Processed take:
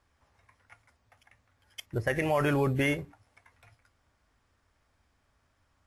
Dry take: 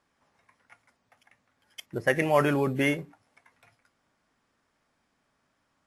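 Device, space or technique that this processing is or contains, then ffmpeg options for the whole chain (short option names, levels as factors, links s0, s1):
car stereo with a boomy subwoofer: -af "lowshelf=f=120:t=q:w=1.5:g=12.5,alimiter=limit=0.133:level=0:latency=1:release=59"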